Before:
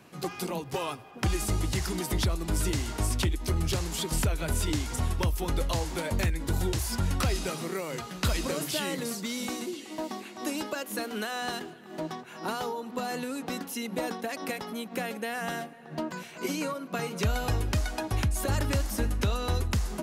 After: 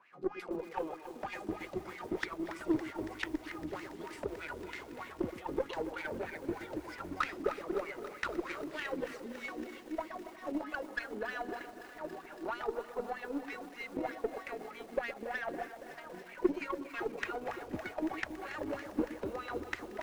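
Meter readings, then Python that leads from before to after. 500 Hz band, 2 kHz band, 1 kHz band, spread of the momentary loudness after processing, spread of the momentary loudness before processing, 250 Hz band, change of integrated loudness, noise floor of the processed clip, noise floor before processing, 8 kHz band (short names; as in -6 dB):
-3.5 dB, -4.0 dB, -5.5 dB, 8 LU, 7 LU, -5.5 dB, -8.5 dB, -51 dBFS, -46 dBFS, -23.0 dB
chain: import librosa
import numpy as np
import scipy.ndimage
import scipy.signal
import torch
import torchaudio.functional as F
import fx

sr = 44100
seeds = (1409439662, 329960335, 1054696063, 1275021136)

y = fx.wah_lfo(x, sr, hz=3.2, low_hz=300.0, high_hz=2200.0, q=5.9)
y = fx.echo_alternate(y, sr, ms=120, hz=900.0, feedback_pct=61, wet_db=-10.5)
y = fx.cheby_harmonics(y, sr, harmonics=(3, 6, 7), levels_db=(-19, -30, -33), full_scale_db=-24.0)
y = fx.echo_crushed(y, sr, ms=280, feedback_pct=80, bits=10, wet_db=-12.5)
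y = F.gain(torch.from_numpy(y), 9.0).numpy()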